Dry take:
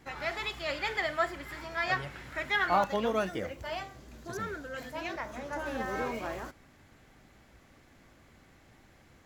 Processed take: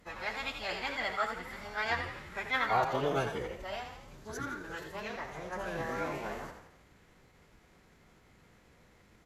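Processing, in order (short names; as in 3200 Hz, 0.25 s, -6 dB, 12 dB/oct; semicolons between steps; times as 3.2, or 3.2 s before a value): frequency-shifting echo 84 ms, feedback 50%, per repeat +47 Hz, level -8 dB; formant-preserving pitch shift -8 st; gain -2 dB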